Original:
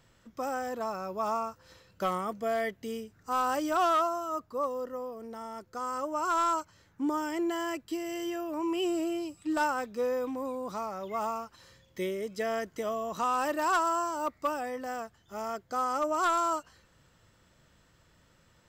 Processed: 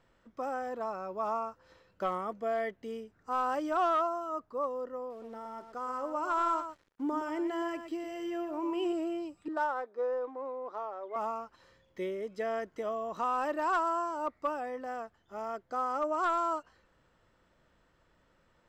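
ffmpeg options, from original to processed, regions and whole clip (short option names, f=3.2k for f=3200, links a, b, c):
-filter_complex "[0:a]asettb=1/sr,asplit=3[a][b][c];[a]atrim=end=5.104[d];[b]atrim=start=5.1:end=8.93,asetpts=PTS-STARTPTS,afade=t=in:d=0.004:c=qsin,afade=t=out:st=3.826:d=0.004:c=qsin,bandreject=f=1.1k:w=24,aecho=1:1:119:0.355,atrim=end_sample=168903,acrusher=bits=8:mix=0:aa=0.5[e];[c]atrim=start=8.926[f];[d][e]acrossfade=d=0.004:c1=hsin:c2=qsin[g];[g][f]acrossfade=d=0.004:c1=qsin:c2=hsin,asettb=1/sr,asplit=3[h][i][j];[h]atrim=end=9.484[k];[i]atrim=start=9.48:end=11.16,asetpts=PTS-STARTPTS,afade=t=in:d=0.004:c=qsin,afade=t=out:st=1.676:d=0.004:c=qsin,highpass=f=350:w=0.5412,highpass=f=350:w=1.3066,equalizer=f=2.7k:t=o:w=0.44:g=-12,adynamicsmooth=sensitivity=6:basefreq=2.5k[l];[j]atrim=start=11.156[m];[k][l]acrossfade=d=0.004:c1=hsin:c2=qsin[n];[n][m]acrossfade=d=0.004:c1=qsin:c2=hsin,lowpass=f=1.4k:p=1,equalizer=f=110:t=o:w=2:g=-10"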